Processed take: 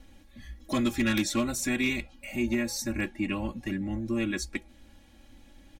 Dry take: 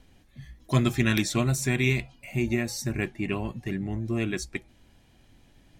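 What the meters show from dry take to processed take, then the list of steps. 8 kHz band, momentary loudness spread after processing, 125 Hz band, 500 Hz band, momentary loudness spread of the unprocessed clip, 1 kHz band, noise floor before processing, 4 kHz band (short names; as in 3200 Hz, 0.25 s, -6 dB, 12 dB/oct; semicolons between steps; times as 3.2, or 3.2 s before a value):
-0.5 dB, 10 LU, -11.0 dB, -3.5 dB, 9 LU, -2.0 dB, -60 dBFS, -1.0 dB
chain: in parallel at +1 dB: compressor 6:1, threshold -34 dBFS, peak gain reduction 16 dB; on the sum: comb 3.6 ms, depth 100%; overloaded stage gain 13 dB; gain -6.5 dB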